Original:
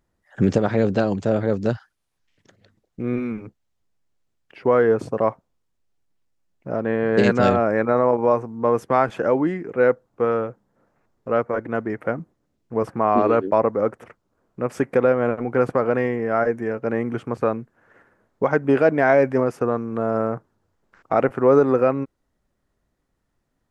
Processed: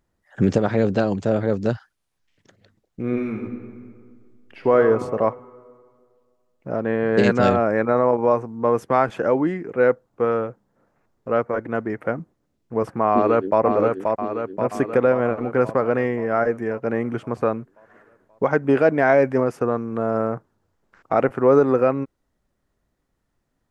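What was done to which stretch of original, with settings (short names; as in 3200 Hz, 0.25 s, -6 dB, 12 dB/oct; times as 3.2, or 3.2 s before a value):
3.03–4.77 reverb throw, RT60 2 s, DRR 4 dB
13.12–13.62 echo throw 0.53 s, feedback 60%, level -4 dB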